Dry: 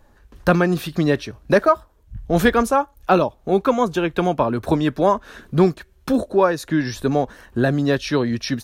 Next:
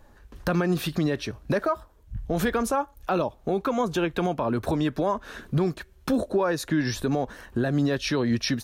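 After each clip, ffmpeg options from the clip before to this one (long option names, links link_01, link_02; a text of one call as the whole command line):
ffmpeg -i in.wav -af "alimiter=limit=-15.5dB:level=0:latency=1:release=113" out.wav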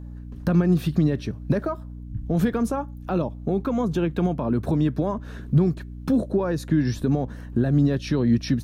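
ffmpeg -i in.wav -af "equalizer=frequency=160:width=0.48:gain=13.5,aeval=exprs='val(0)+0.0355*(sin(2*PI*60*n/s)+sin(2*PI*2*60*n/s)/2+sin(2*PI*3*60*n/s)/3+sin(2*PI*4*60*n/s)/4+sin(2*PI*5*60*n/s)/5)':channel_layout=same,volume=-6.5dB" out.wav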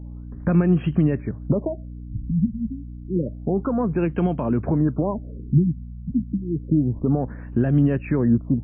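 ffmpeg -i in.wav -af "afftfilt=real='re*lt(b*sr/1024,250*pow(3300/250,0.5+0.5*sin(2*PI*0.29*pts/sr)))':imag='im*lt(b*sr/1024,250*pow(3300/250,0.5+0.5*sin(2*PI*0.29*pts/sr)))':win_size=1024:overlap=0.75,volume=1.5dB" out.wav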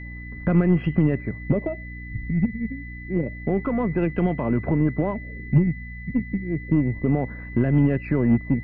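ffmpeg -i in.wav -af "aeval=exprs='val(0)+0.0126*sin(2*PI*2000*n/s)':channel_layout=same,aeval=exprs='0.422*(cos(1*acos(clip(val(0)/0.422,-1,1)))-cos(1*PI/2))+0.0211*(cos(3*acos(clip(val(0)/0.422,-1,1)))-cos(3*PI/2))+0.015*(cos(6*acos(clip(val(0)/0.422,-1,1)))-cos(6*PI/2))':channel_layout=same" out.wav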